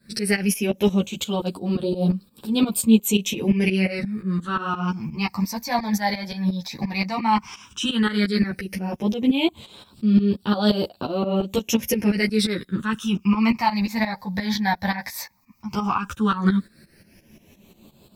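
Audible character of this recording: phasing stages 8, 0.12 Hz, lowest notch 370–2000 Hz; tremolo saw up 5.7 Hz, depth 85%; a shimmering, thickened sound

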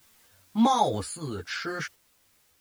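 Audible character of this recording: a quantiser's noise floor 10-bit, dither triangular; random-step tremolo 3.6 Hz, depth 55%; a shimmering, thickened sound

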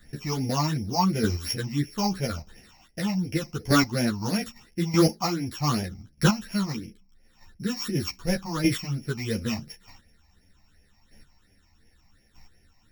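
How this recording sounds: a buzz of ramps at a fixed pitch in blocks of 8 samples; phasing stages 8, 2.8 Hz, lowest notch 440–1200 Hz; chopped level 0.81 Hz, depth 60%, duty 10%; a shimmering, thickened sound

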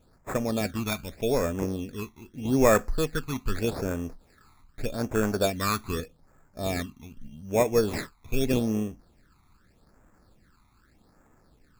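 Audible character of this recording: aliases and images of a low sample rate 3 kHz, jitter 0%; phasing stages 12, 0.82 Hz, lowest notch 510–4300 Hz

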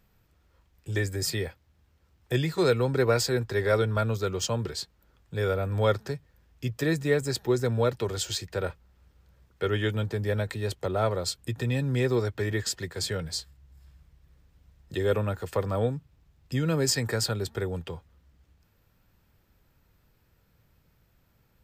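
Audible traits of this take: noise floor -67 dBFS; spectral tilt -5.0 dB/octave

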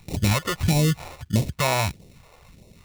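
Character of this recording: aliases and images of a low sample rate 1.6 kHz, jitter 0%; phasing stages 2, 1.6 Hz, lowest notch 180–1300 Hz

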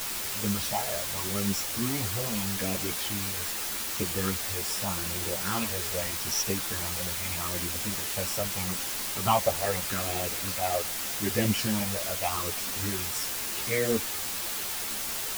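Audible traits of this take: phasing stages 6, 0.81 Hz, lowest notch 260–1200 Hz; a quantiser's noise floor 6-bit, dither triangular; a shimmering, thickened sound

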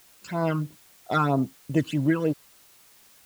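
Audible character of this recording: phasing stages 12, 3.1 Hz, lowest notch 600–2500 Hz; a quantiser's noise floor 10-bit, dither triangular

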